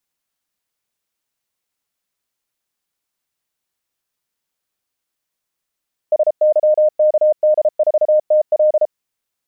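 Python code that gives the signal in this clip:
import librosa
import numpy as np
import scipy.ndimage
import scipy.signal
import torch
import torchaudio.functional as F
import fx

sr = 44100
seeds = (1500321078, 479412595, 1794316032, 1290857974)

y = fx.morse(sr, text='SYKD4TL', wpm=33, hz=612.0, level_db=-9.0)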